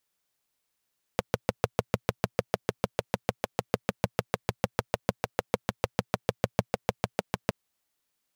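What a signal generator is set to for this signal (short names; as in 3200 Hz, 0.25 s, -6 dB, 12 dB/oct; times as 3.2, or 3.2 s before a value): single-cylinder engine model, steady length 6.32 s, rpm 800, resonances 120/190/470 Hz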